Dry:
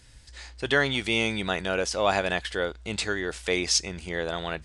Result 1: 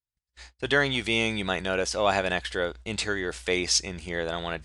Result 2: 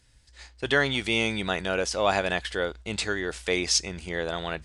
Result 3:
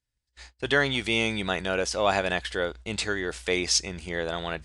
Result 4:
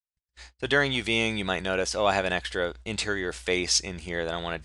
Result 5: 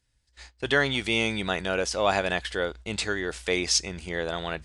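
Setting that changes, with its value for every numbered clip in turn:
gate, range: -44 dB, -8 dB, -32 dB, -59 dB, -20 dB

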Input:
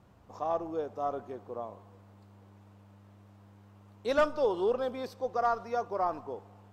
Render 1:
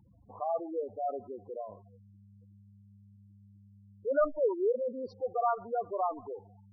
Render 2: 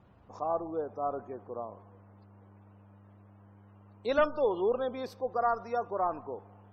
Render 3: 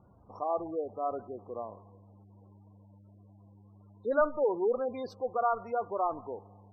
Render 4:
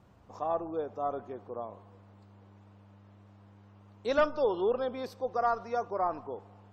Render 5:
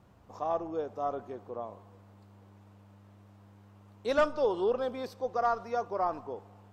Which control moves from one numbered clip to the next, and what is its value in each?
spectral gate, under each frame's peak: -10 dB, -35 dB, -20 dB, -45 dB, -60 dB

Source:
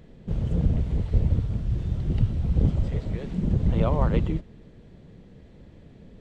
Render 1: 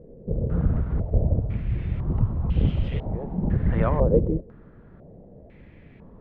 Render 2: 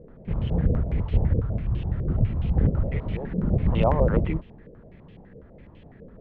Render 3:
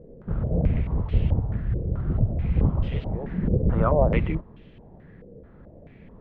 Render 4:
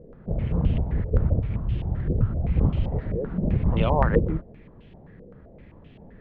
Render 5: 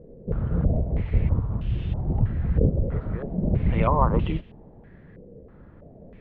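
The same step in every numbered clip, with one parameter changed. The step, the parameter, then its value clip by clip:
step-sequenced low-pass, rate: 2 Hz, 12 Hz, 4.6 Hz, 7.7 Hz, 3.1 Hz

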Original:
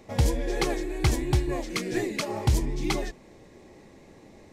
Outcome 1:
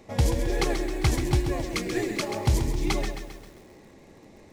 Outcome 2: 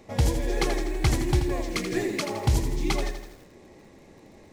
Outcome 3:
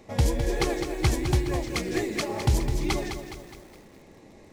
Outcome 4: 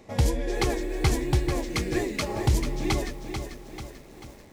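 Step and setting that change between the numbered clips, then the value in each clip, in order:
bit-crushed delay, time: 133 ms, 82 ms, 208 ms, 440 ms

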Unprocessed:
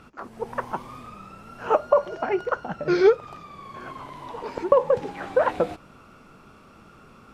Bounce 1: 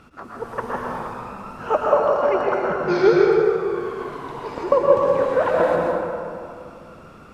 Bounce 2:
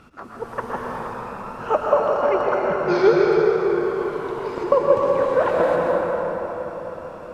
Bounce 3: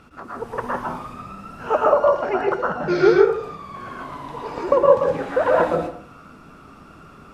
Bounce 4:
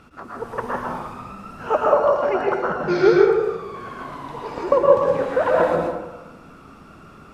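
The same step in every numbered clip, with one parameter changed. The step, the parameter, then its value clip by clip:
plate-style reverb, RT60: 2.5 s, 5.1 s, 0.53 s, 1.1 s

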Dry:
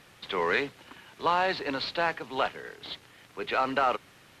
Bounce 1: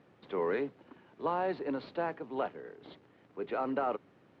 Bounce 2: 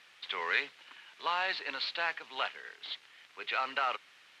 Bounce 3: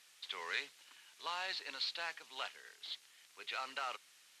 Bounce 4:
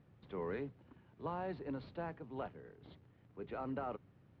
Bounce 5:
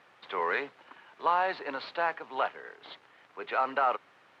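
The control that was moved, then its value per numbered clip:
band-pass filter, frequency: 300 Hz, 2.8 kHz, 7.6 kHz, 100 Hz, 980 Hz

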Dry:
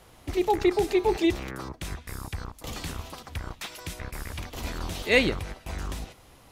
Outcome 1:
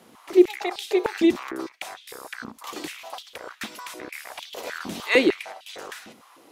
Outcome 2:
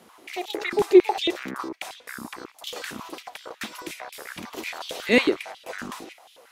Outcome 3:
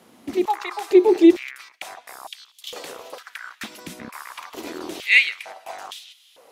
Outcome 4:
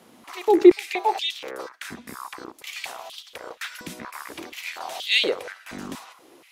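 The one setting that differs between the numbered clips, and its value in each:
step-sequenced high-pass, rate: 6.6 Hz, 11 Hz, 2.2 Hz, 4.2 Hz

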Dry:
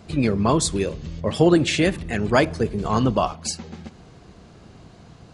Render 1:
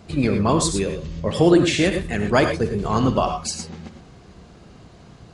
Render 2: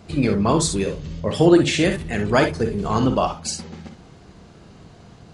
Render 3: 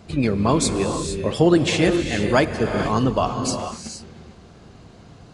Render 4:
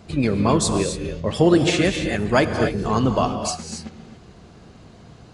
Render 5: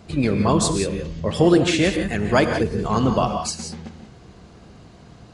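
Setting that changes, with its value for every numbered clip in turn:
gated-style reverb, gate: 130 ms, 80 ms, 490 ms, 300 ms, 200 ms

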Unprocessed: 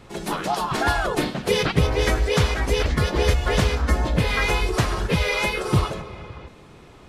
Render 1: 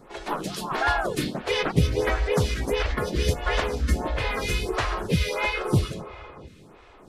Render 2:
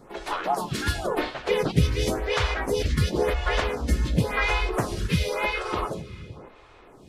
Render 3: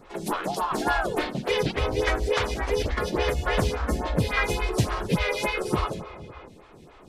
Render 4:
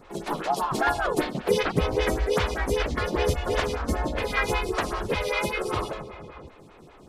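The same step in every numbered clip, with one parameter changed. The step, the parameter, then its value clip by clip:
lamp-driven phase shifter, rate: 1.5 Hz, 0.94 Hz, 3.5 Hz, 5.1 Hz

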